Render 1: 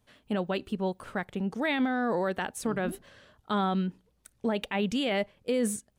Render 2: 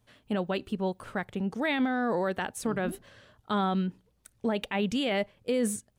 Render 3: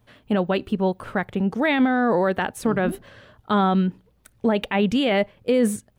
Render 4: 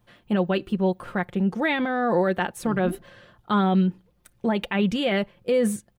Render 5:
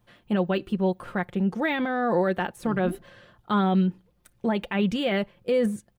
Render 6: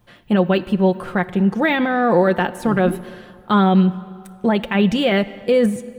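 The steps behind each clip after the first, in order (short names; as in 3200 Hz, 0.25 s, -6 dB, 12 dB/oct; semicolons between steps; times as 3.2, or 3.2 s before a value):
bell 110 Hz +6.5 dB 0.27 oct
bell 7600 Hz -8 dB 1.8 oct; gain +8.5 dB
comb 5.7 ms, depth 50%; gain -3 dB
de-esser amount 85%; gain -1.5 dB
plate-style reverb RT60 2.1 s, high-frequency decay 0.75×, DRR 15.5 dB; gain +8 dB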